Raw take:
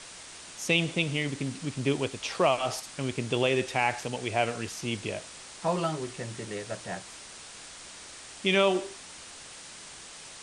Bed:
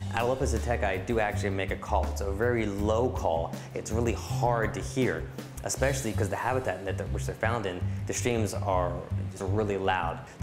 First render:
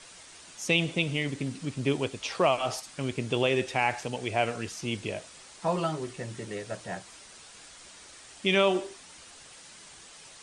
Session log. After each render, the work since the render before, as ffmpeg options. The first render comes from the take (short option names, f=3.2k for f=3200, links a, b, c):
-af "afftdn=nr=6:nf=-46"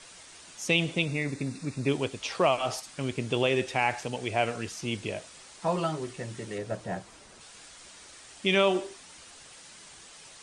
-filter_complex "[0:a]asettb=1/sr,asplit=3[a][b][c];[a]atrim=end=1.054[d];[b]atrim=start=1.05:end=1.89,asetpts=PTS-STARTPTS,afade=t=in:d=0.004:c=qsin,afade=t=out:st=0.836:d=0.004:c=qsin,asuperstop=centerf=3100:order=12:qfactor=4.6[e];[c]atrim=start=1.886[f];[d][e]acrossfade=d=0.004:c1=hsin:c2=qsin[g];[g][f]acrossfade=d=0.004:c1=qsin:c2=hsin,asettb=1/sr,asplit=3[h][i][j];[h]atrim=end=6.584[k];[i]atrim=start=6.58:end=7.41,asetpts=PTS-STARTPTS,afade=t=in:d=0.004:c=qsin,afade=t=out:st=0.826:d=0.004:c=qsin,tiltshelf=f=1.2k:g=5[l];[j]atrim=start=7.406[m];[k][l]acrossfade=d=0.004:c1=hsin:c2=qsin[n];[n][m]acrossfade=d=0.004:c1=qsin:c2=hsin"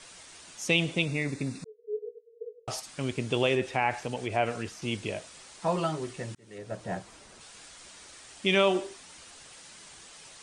-filter_complex "[0:a]asettb=1/sr,asplit=3[a][b][c];[a]atrim=end=1.644[d];[b]atrim=start=1.64:end=2.68,asetpts=PTS-STARTPTS,afade=t=in:d=0.004:c=qsin,afade=t=out:st=1.036:d=0.004:c=qsin,asuperpass=centerf=450:order=12:qfactor=6.9[e];[c]atrim=start=2.676[f];[d][e]acrossfade=d=0.004:c1=hsin:c2=qsin[g];[g][f]acrossfade=d=0.004:c1=qsin:c2=hsin,asettb=1/sr,asplit=3[h][i][j];[h]atrim=end=3.554[k];[i]atrim=start=3.55:end=4.82,asetpts=PTS-STARTPTS,afade=t=in:d=0.004:c=qsin,afade=t=out:st=1.266:d=0.004:c=qsin,acrossover=split=2600[l][m];[m]acompressor=threshold=-44dB:ratio=4:attack=1:release=60[n];[l][n]amix=inputs=2:normalize=0[o];[j]atrim=start=4.816[p];[k][o]acrossfade=d=0.004:c1=hsin:c2=qsin[q];[q][p]acrossfade=d=0.004:c1=qsin:c2=hsin,asplit=2[r][s];[r]atrim=end=6.35,asetpts=PTS-STARTPTS,afade=t=out:st=6.346:d=0.004:c=hsin[t];[s]atrim=start=6.35,asetpts=PTS-STARTPTS,afade=t=in:d=0.56[u];[t][u]concat=n=2:v=0:a=1"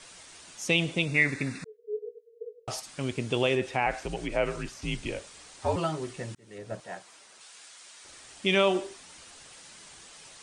-filter_complex "[0:a]asettb=1/sr,asplit=3[a][b][c];[a]atrim=end=1.144[d];[b]atrim=start=1.14:end=1.77,asetpts=PTS-STARTPTS,afade=t=in:d=0.004:c=qsin,afade=t=out:st=0.626:d=0.004:c=qsin,equalizer=f=1.8k:w=1.3:g=13.5[e];[c]atrim=start=1.766[f];[d][e]acrossfade=d=0.004:c1=hsin:c2=qsin[g];[g][f]acrossfade=d=0.004:c1=qsin:c2=hsin,asettb=1/sr,asplit=3[h][i][j];[h]atrim=end=3.864[k];[i]atrim=start=3.86:end=5.76,asetpts=PTS-STARTPTS,afade=t=in:d=0.004:c=qsin,afade=t=out:st=1.896:d=0.004:c=qsin,afreqshift=-78[l];[j]atrim=start=5.756[m];[k][l]acrossfade=d=0.004:c1=hsin:c2=qsin[n];[n][m]acrossfade=d=0.004:c1=qsin:c2=hsin,asettb=1/sr,asplit=3[o][p][q];[o]atrim=end=6.804[r];[p]atrim=start=6.8:end=8.05,asetpts=PTS-STARTPTS,afade=t=in:d=0.004:c=qsin,afade=t=out:st=1.246:d=0.004:c=qsin,highpass=f=1k:p=1[s];[q]atrim=start=8.046[t];[r][s]acrossfade=d=0.004:c1=hsin:c2=qsin[u];[u][t]acrossfade=d=0.004:c1=qsin:c2=hsin"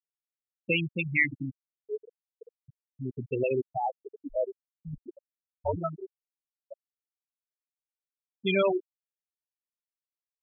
-af "agate=range=-33dB:threshold=-42dB:ratio=3:detection=peak,afftfilt=real='re*gte(hypot(re,im),0.2)':imag='im*gte(hypot(re,im),0.2)':win_size=1024:overlap=0.75"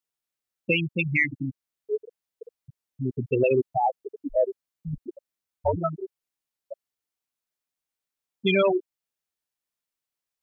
-af "alimiter=limit=-18.5dB:level=0:latency=1:release=471,acontrast=75"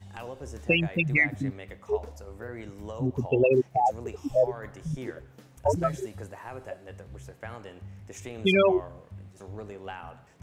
-filter_complex "[1:a]volume=-12.5dB[a];[0:a][a]amix=inputs=2:normalize=0"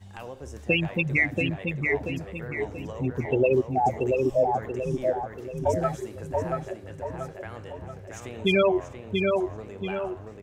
-filter_complex "[0:a]asplit=2[a][b];[b]adelay=683,lowpass=f=3.2k:p=1,volume=-3dB,asplit=2[c][d];[d]adelay=683,lowpass=f=3.2k:p=1,volume=0.47,asplit=2[e][f];[f]adelay=683,lowpass=f=3.2k:p=1,volume=0.47,asplit=2[g][h];[h]adelay=683,lowpass=f=3.2k:p=1,volume=0.47,asplit=2[i][j];[j]adelay=683,lowpass=f=3.2k:p=1,volume=0.47,asplit=2[k][l];[l]adelay=683,lowpass=f=3.2k:p=1,volume=0.47[m];[a][c][e][g][i][k][m]amix=inputs=7:normalize=0"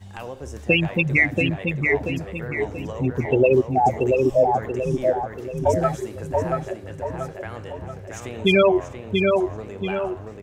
-af "volume=5dB"